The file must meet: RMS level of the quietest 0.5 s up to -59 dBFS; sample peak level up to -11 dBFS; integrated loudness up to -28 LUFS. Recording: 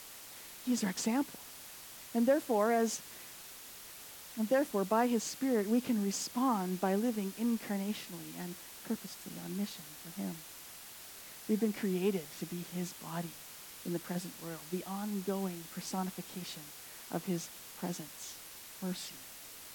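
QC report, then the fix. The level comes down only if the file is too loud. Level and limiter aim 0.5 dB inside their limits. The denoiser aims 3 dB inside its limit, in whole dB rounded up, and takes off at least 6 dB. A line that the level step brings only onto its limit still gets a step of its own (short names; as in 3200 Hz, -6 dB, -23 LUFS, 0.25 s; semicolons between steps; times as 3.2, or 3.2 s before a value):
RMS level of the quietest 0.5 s -50 dBFS: fail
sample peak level -16.5 dBFS: OK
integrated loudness -36.0 LUFS: OK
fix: denoiser 12 dB, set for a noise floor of -50 dBFS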